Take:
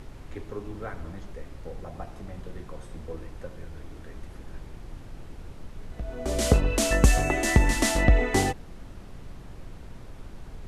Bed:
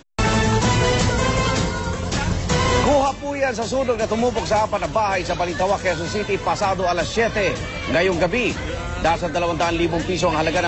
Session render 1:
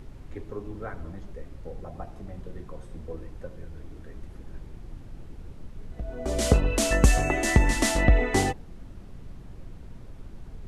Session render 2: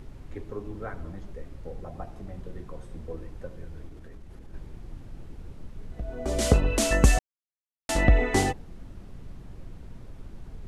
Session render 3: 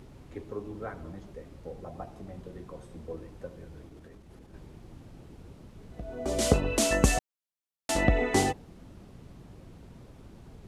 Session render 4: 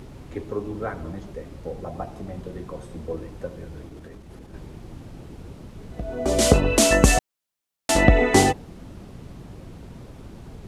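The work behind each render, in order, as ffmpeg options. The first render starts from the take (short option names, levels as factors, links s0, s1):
-af "afftdn=nr=6:nf=-44"
-filter_complex "[0:a]asettb=1/sr,asplit=3[s0][s1][s2];[s0]atrim=end=3.874[s3];[s1]atrim=start=3.87:end=4.54,asetpts=PTS-STARTPTS,afade=t=in:d=0.004:c=qsin,afade=t=out:st=0.666:d=0.004:c=qsin,acompressor=threshold=0.0112:ratio=6:attack=3.2:release=140:knee=1:detection=peak[s4];[s2]atrim=start=4.536[s5];[s3][s4]acrossfade=d=0.004:c1=hsin:c2=qsin[s6];[s6][s5]acrossfade=d=0.004:c1=qsin:c2=hsin,asplit=3[s7][s8][s9];[s7]atrim=end=7.19,asetpts=PTS-STARTPTS,afade=t=out:st=7.186:d=0.004:c=hsin[s10];[s8]atrim=start=7.19:end=7.89,asetpts=PTS-STARTPTS,volume=0[s11];[s9]atrim=start=7.89,asetpts=PTS-STARTPTS,afade=t=in:d=0.004:c=hsin[s12];[s10][s11][s12]concat=n=3:v=0:a=1"
-af "highpass=f=120:p=1,equalizer=f=1700:w=1.5:g=-3"
-af "volume=2.66,alimiter=limit=0.891:level=0:latency=1"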